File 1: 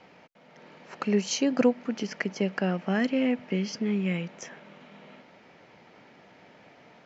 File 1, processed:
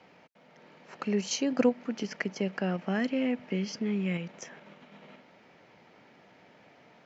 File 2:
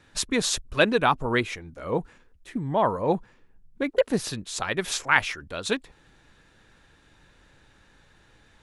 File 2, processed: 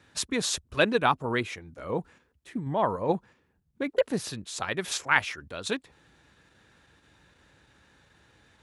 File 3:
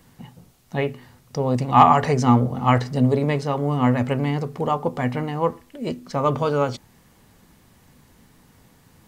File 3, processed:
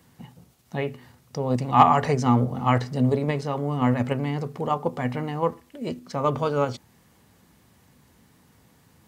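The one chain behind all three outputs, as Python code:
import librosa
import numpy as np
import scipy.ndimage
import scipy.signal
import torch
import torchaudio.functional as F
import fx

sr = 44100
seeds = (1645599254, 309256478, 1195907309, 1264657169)

p1 = scipy.signal.sosfilt(scipy.signal.butter(4, 55.0, 'highpass', fs=sr, output='sos'), x)
p2 = fx.level_steps(p1, sr, step_db=10)
p3 = p1 + (p2 * librosa.db_to_amplitude(-0.5))
y = p3 * librosa.db_to_amplitude(-7.0)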